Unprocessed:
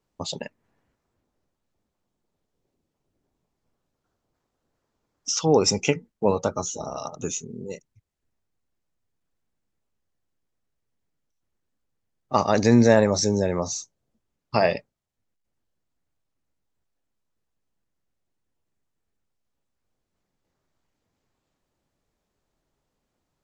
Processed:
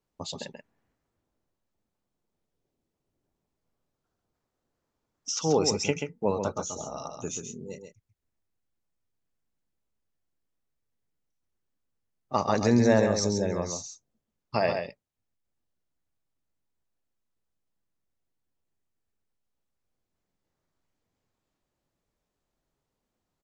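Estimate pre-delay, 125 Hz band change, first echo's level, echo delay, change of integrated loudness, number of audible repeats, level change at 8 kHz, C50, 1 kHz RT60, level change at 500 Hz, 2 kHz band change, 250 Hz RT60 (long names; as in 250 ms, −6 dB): no reverb audible, −4.5 dB, −6.5 dB, 134 ms, −5.0 dB, 1, −4.5 dB, no reverb audible, no reverb audible, −4.5 dB, −4.5 dB, no reverb audible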